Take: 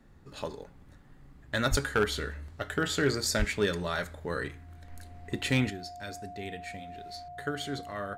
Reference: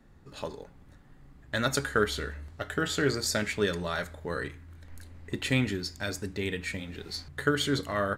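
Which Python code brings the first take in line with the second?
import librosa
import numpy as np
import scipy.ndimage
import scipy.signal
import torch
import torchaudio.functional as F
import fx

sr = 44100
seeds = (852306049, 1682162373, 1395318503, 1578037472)

y = fx.fix_declip(x, sr, threshold_db=-17.5)
y = fx.notch(y, sr, hz=710.0, q=30.0)
y = fx.highpass(y, sr, hz=140.0, slope=24, at=(1.7, 1.82), fade=0.02)
y = fx.highpass(y, sr, hz=140.0, slope=24, at=(3.38, 3.5), fade=0.02)
y = fx.fix_level(y, sr, at_s=5.7, step_db=8.0)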